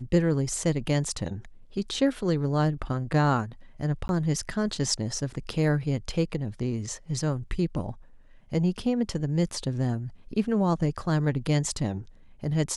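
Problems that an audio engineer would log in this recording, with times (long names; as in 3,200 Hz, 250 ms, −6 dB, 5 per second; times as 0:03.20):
0:04.08–0:04.09: drop-out 11 ms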